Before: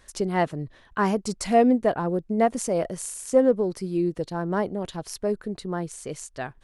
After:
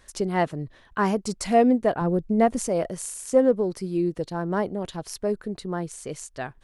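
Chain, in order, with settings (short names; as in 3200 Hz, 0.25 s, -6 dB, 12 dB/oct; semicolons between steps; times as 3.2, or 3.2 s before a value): 2.01–2.68 low shelf 140 Hz +11 dB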